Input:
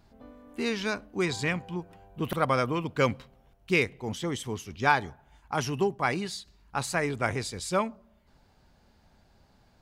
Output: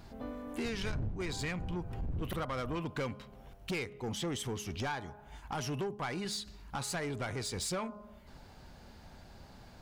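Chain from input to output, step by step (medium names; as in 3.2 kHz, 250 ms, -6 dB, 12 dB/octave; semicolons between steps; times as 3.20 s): 0.64–2.78 s: wind noise 100 Hz -28 dBFS; de-hum 207.5 Hz, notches 7; compression 4:1, threshold -41 dBFS, peak gain reduction 23.5 dB; saturation -39 dBFS, distortion -11 dB; trim +8.5 dB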